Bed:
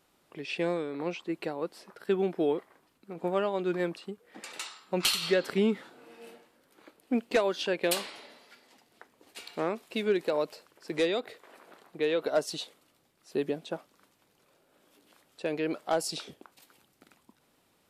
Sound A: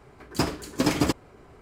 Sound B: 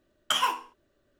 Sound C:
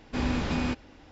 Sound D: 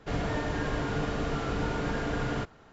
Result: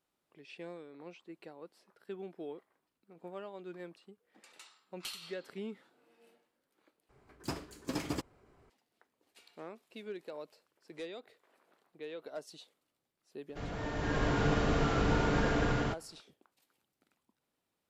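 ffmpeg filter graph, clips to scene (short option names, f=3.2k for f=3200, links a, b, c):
-filter_complex "[0:a]volume=-16dB[a];[4:a]dynaudnorm=f=230:g=5:m=12dB[b];[a]asplit=2[c][d];[c]atrim=end=7.094[e];[1:a]atrim=end=1.61,asetpts=PTS-STARTPTS,volume=-13.5dB[f];[d]atrim=start=8.696[g];[b]atrim=end=2.72,asetpts=PTS-STARTPTS,volume=-10.5dB,afade=t=in:d=0.004:c=hsin,afade=t=out:st=2.716:d=0.004:c=hsin,adelay=13490[h];[e][f]acrossfade=d=0.004:c1=hsin:c2=hsin[i];[i][g]acrossfade=d=0.004:c1=hsin:c2=hsin[j];[j][h]amix=inputs=2:normalize=0"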